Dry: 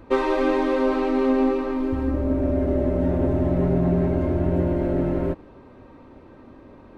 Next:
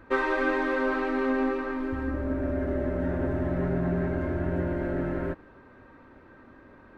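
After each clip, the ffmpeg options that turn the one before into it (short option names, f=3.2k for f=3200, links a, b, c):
-af "equalizer=f=1.6k:w=1.9:g=13,volume=-7dB"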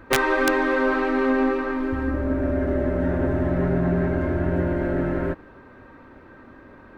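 -af "aeval=exprs='(mod(5.62*val(0)+1,2)-1)/5.62':c=same,volume=5.5dB"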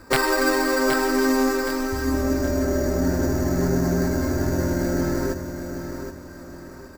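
-filter_complex "[0:a]acrusher=samples=7:mix=1:aa=0.000001,asplit=2[a][b];[b]aecho=0:1:771|1542|2313|3084:0.376|0.132|0.046|0.0161[c];[a][c]amix=inputs=2:normalize=0"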